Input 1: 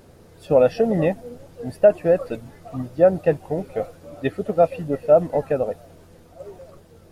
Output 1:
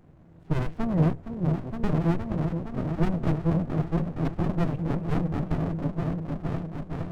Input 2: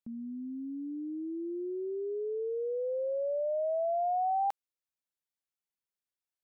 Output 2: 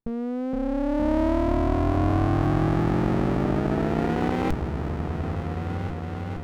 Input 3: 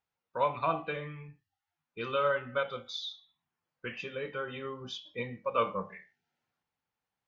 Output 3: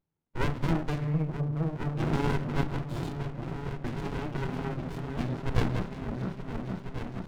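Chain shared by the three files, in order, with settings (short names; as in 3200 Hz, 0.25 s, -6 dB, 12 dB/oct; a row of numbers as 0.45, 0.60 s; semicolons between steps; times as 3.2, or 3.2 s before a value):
Wiener smoothing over 9 samples; thirty-one-band EQ 160 Hz +10 dB, 315 Hz +8 dB, 630 Hz -3 dB, 3150 Hz -9 dB; on a send: repeats that get brighter 0.465 s, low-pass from 200 Hz, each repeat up 1 oct, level 0 dB; on the sum: dynamic EQ 210 Hz, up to -6 dB, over -40 dBFS, Q 5.1; running maximum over 65 samples; normalise peaks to -12 dBFS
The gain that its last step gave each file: -5.5, +13.0, +7.0 dB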